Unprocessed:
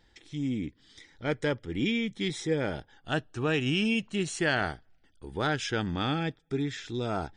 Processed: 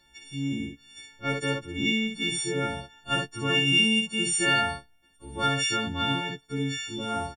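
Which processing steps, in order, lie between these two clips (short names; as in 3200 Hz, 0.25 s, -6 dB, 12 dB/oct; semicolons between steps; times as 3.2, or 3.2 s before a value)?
frequency quantiser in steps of 4 st; early reflections 15 ms -5.5 dB, 59 ms -4 dB; gain -2 dB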